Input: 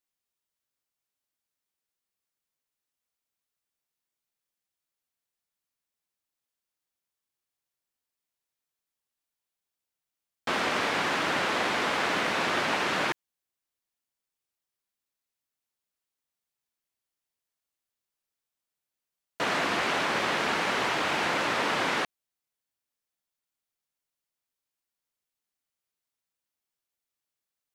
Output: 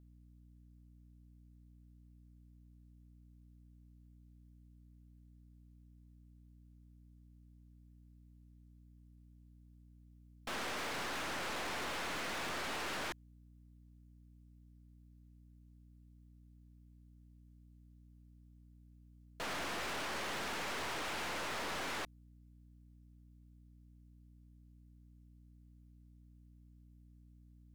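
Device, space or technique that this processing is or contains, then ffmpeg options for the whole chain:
valve amplifier with mains hum: -af "aeval=exprs='(tanh(70.8*val(0)+0.45)-tanh(0.45))/70.8':c=same,aeval=exprs='val(0)+0.00141*(sin(2*PI*60*n/s)+sin(2*PI*2*60*n/s)/2+sin(2*PI*3*60*n/s)/3+sin(2*PI*4*60*n/s)/4+sin(2*PI*5*60*n/s)/5)':c=same,volume=-2dB"

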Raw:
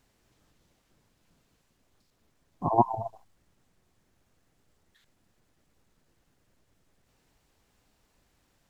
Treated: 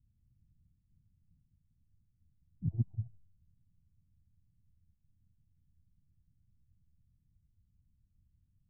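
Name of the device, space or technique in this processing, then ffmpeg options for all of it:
the neighbour's flat through the wall: -af "lowpass=f=170:w=0.5412,lowpass=f=170:w=1.3066,equalizer=f=84:t=o:w=0.76:g=6.5"

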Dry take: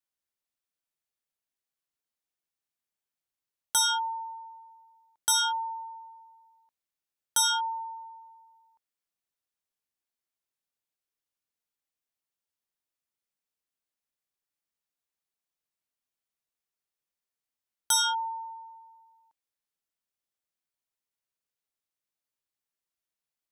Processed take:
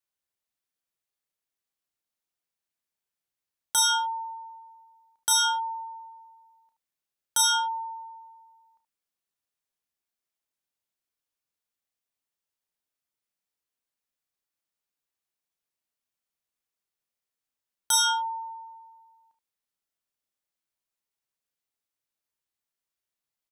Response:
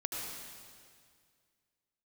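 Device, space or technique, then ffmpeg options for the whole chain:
slapback doubling: -filter_complex "[0:a]asplit=3[a][b][c];[b]adelay=31,volume=-8.5dB[d];[c]adelay=76,volume=-10.5dB[e];[a][d][e]amix=inputs=3:normalize=0"

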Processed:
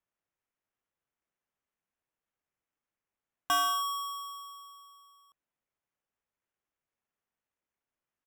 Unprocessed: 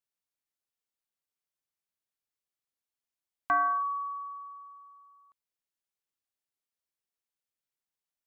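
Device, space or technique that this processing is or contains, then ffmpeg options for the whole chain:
crushed at another speed: -af "asetrate=55125,aresample=44100,acrusher=samples=8:mix=1:aa=0.000001,asetrate=35280,aresample=44100,volume=-1.5dB"

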